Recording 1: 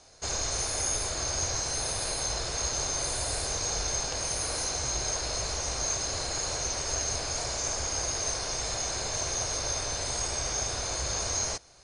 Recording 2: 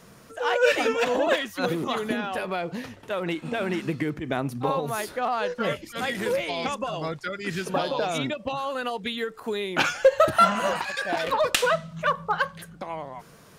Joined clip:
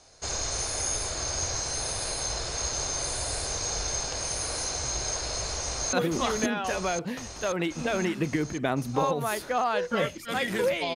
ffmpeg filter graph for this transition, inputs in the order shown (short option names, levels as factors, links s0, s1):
-filter_complex "[0:a]apad=whole_dur=10.95,atrim=end=10.95,atrim=end=5.932[s0];[1:a]atrim=start=1.598:end=6.62[s1];[s0][s1]acrossfade=d=0.004:c1=hsin:c2=hsin,asplit=2[s2][s3];[s3]afade=t=in:st=5.58:d=0.01,afade=t=out:st=5.93:d=0.01,aecho=0:1:530|1060|1590|2120|2650|3180|3710|4240|4770|5300|5830|6360:0.595662|0.446747|0.33506|0.251295|0.188471|0.141353|0.106015|0.0795113|0.0596335|0.0447251|0.0335438|0.0251579[s4];[s2][s4]amix=inputs=2:normalize=0"